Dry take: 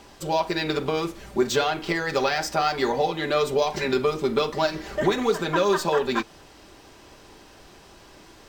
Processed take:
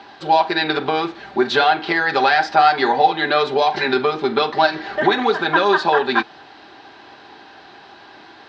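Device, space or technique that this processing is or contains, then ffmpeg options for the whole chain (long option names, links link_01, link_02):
kitchen radio: -af "highpass=170,equalizer=frequency=180:width_type=q:width=4:gain=-6,equalizer=frequency=530:width_type=q:width=4:gain=-6,equalizer=frequency=790:width_type=q:width=4:gain=9,equalizer=frequency=1600:width_type=q:width=4:gain=8,equalizer=frequency=4000:width_type=q:width=4:gain=6,lowpass=frequency=4300:width=0.5412,lowpass=frequency=4300:width=1.3066,volume=5dB"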